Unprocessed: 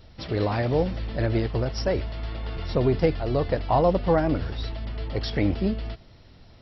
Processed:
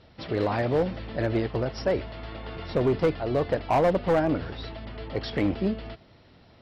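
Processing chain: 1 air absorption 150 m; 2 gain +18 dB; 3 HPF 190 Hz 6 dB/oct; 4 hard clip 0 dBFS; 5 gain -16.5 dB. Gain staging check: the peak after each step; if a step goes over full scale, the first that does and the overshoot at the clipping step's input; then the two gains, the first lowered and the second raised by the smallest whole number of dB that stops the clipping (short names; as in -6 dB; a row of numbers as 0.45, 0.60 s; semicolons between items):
-10.0, +8.0, +7.5, 0.0, -16.5 dBFS; step 2, 7.5 dB; step 2 +10 dB, step 5 -8.5 dB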